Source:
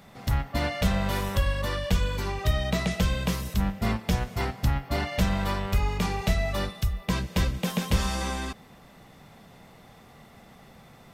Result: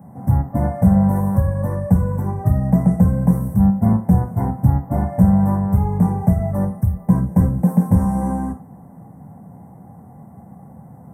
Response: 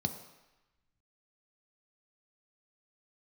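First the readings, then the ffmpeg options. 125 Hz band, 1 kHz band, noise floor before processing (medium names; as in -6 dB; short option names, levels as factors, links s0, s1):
+12.0 dB, +5.5 dB, -52 dBFS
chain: -filter_complex "[0:a]asuperstop=centerf=3600:order=8:qfactor=0.56[s0];[1:a]atrim=start_sample=2205,atrim=end_sample=3969[s1];[s0][s1]afir=irnorm=-1:irlink=0"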